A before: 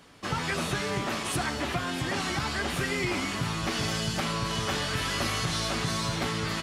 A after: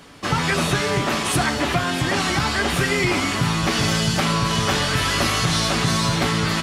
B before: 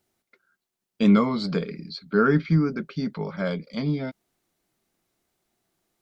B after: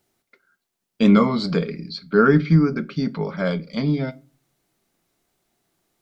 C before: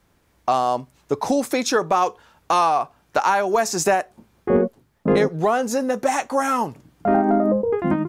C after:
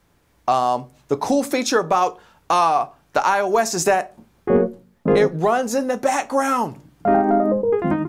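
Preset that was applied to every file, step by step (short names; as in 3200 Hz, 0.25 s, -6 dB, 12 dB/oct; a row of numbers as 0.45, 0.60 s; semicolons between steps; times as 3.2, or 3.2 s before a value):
shoebox room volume 170 m³, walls furnished, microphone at 0.31 m; match loudness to -20 LUFS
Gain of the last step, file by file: +9.0, +4.0, +1.0 dB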